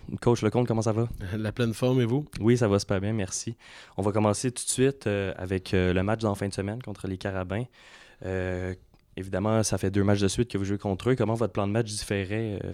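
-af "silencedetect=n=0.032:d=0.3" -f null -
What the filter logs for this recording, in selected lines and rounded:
silence_start: 3.52
silence_end: 3.98 | silence_duration: 0.47
silence_start: 7.63
silence_end: 8.22 | silence_duration: 0.60
silence_start: 8.73
silence_end: 9.18 | silence_duration: 0.44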